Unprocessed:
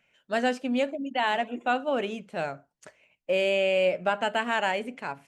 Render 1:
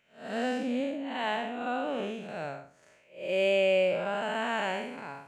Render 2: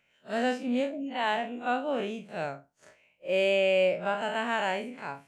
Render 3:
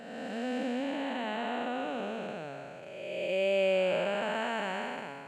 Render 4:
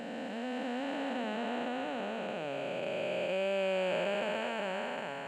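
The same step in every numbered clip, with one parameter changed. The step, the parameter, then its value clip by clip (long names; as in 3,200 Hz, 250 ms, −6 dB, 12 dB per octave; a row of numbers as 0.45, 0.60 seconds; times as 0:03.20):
spectrum smeared in time, width: 210, 84, 644, 1,590 milliseconds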